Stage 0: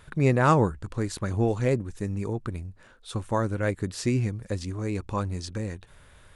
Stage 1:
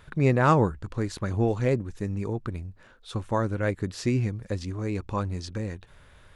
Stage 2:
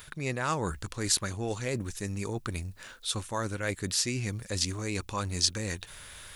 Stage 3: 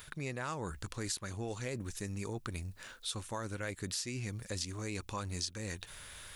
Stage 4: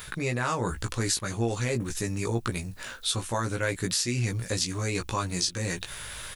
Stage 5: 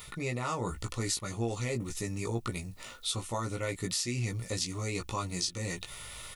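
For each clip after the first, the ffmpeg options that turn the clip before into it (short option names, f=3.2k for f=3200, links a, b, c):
-af "equalizer=f=9.2k:t=o:w=0.81:g=-7.5"
-af "areverse,acompressor=threshold=-31dB:ratio=6,areverse,crystalizer=i=9.5:c=0"
-af "acompressor=threshold=-32dB:ratio=6,volume=-3dB"
-filter_complex "[0:a]asplit=2[a][b];[b]adelay=17,volume=-3.5dB[c];[a][c]amix=inputs=2:normalize=0,volume=9dB"
-af "asuperstop=centerf=1600:order=20:qfactor=5.9,volume=-5dB"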